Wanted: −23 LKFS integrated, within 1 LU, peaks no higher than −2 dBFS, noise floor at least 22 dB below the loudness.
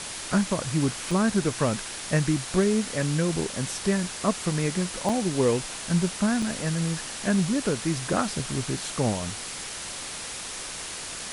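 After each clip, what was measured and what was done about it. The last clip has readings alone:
number of dropouts 3; longest dropout 3.3 ms; background noise floor −36 dBFS; target noise floor −49 dBFS; integrated loudness −27.0 LKFS; sample peak −9.5 dBFS; target loudness −23.0 LKFS
→ repair the gap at 0:01.11/0:05.09/0:06.42, 3.3 ms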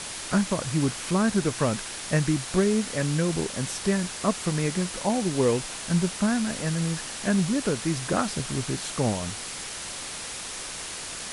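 number of dropouts 0; background noise floor −36 dBFS; target noise floor −49 dBFS
→ broadband denoise 13 dB, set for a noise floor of −36 dBFS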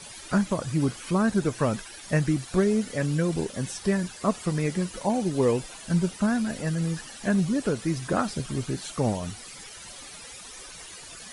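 background noise floor −44 dBFS; target noise floor −49 dBFS
→ broadband denoise 6 dB, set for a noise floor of −44 dBFS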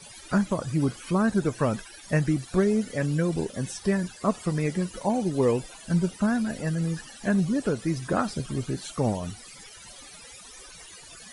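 background noise floor −47 dBFS; target noise floor −49 dBFS
→ broadband denoise 6 dB, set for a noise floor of −47 dBFS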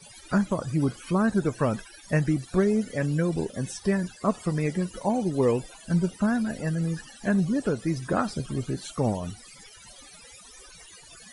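background noise floor −50 dBFS; integrated loudness −27.0 LKFS; sample peak −10.0 dBFS; target loudness −23.0 LKFS
→ level +4 dB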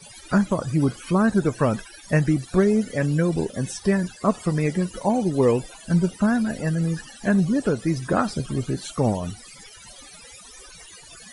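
integrated loudness −23.0 LKFS; sample peak −6.0 dBFS; background noise floor −46 dBFS

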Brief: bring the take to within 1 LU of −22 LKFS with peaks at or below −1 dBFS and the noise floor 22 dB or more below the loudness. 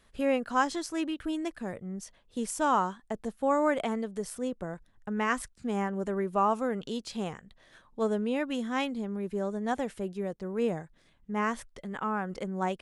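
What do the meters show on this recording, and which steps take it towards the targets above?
integrated loudness −32.0 LKFS; sample peak −13.5 dBFS; target loudness −22.0 LKFS
→ level +10 dB

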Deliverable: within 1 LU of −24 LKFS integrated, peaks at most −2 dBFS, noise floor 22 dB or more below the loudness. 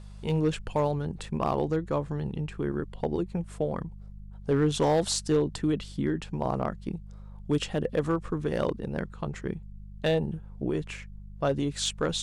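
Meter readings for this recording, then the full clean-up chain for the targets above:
share of clipped samples 0.5%; peaks flattened at −17.5 dBFS; mains hum 50 Hz; hum harmonics up to 200 Hz; level of the hum −42 dBFS; integrated loudness −30.0 LKFS; sample peak −17.5 dBFS; target loudness −24.0 LKFS
→ clipped peaks rebuilt −17.5 dBFS
hum removal 50 Hz, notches 4
level +6 dB

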